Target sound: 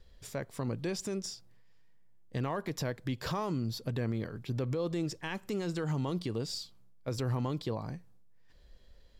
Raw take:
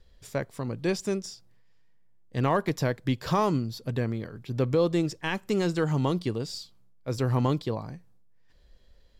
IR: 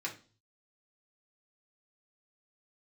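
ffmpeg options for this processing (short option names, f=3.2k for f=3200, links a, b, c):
-af "alimiter=level_in=1.5dB:limit=-24dB:level=0:latency=1:release=110,volume=-1.5dB"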